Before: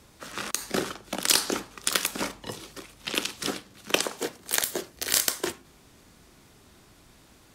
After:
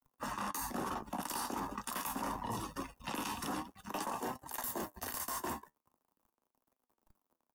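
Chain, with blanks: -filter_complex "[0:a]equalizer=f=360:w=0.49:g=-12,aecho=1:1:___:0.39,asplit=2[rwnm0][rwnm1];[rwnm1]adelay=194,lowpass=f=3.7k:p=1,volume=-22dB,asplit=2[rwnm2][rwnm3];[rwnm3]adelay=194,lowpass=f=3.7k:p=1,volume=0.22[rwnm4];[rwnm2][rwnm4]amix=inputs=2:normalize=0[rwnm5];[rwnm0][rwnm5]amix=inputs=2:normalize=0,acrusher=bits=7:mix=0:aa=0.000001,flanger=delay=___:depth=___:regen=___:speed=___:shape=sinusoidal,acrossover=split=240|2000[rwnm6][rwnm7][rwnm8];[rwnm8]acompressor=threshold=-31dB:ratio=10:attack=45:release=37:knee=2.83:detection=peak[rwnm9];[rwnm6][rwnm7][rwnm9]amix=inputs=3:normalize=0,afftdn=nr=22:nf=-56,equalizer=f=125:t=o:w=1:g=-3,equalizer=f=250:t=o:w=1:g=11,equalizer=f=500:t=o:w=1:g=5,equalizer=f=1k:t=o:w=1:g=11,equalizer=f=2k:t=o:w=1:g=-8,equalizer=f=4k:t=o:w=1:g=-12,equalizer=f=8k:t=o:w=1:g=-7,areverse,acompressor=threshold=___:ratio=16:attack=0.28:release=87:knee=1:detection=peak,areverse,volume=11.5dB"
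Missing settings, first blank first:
1.1, 7.6, 6.2, 72, 0.45, -43dB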